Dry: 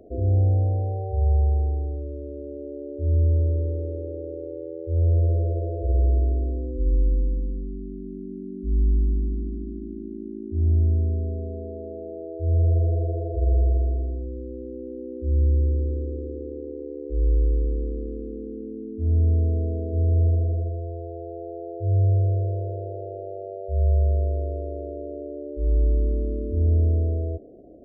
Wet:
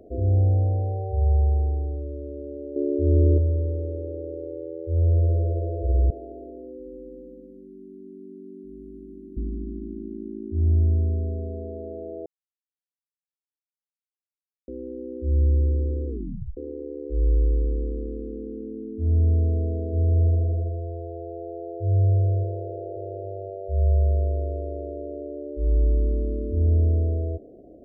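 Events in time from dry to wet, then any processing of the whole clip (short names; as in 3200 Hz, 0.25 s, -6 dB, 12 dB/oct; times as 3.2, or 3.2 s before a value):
2.76–3.38 bell 340 Hz +13 dB 1.3 oct
6.1–9.37 Bessel high-pass 430 Hz
12.26–14.68 mute
16.07 tape stop 0.50 s
21.9–22.71 echo throw 0.53 s, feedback 45%, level -15 dB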